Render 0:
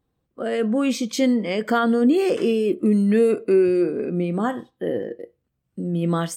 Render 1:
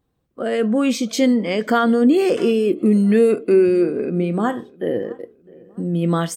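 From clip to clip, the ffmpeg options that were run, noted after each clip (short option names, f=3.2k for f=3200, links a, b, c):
-filter_complex "[0:a]asplit=2[a][b];[b]adelay=658,lowpass=f=2.1k:p=1,volume=-23.5dB,asplit=2[c][d];[d]adelay=658,lowpass=f=2.1k:p=1,volume=0.43,asplit=2[e][f];[f]adelay=658,lowpass=f=2.1k:p=1,volume=0.43[g];[a][c][e][g]amix=inputs=4:normalize=0,volume=3dB"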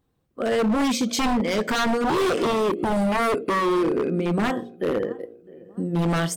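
-af "bandreject=f=59.01:t=h:w=4,bandreject=f=118.02:t=h:w=4,bandreject=f=177.03:t=h:w=4,bandreject=f=236.04:t=h:w=4,bandreject=f=295.05:t=h:w=4,bandreject=f=354.06:t=h:w=4,bandreject=f=413.07:t=h:w=4,bandreject=f=472.08:t=h:w=4,bandreject=f=531.09:t=h:w=4,bandreject=f=590.1:t=h:w=4,bandreject=f=649.11:t=h:w=4,bandreject=f=708.12:t=h:w=4,bandreject=f=767.13:t=h:w=4,aeval=exprs='0.15*(abs(mod(val(0)/0.15+3,4)-2)-1)':c=same"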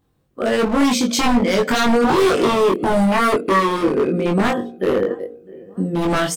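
-filter_complex "[0:a]asplit=2[a][b];[b]adelay=21,volume=-2.5dB[c];[a][c]amix=inputs=2:normalize=0,volume=4dB"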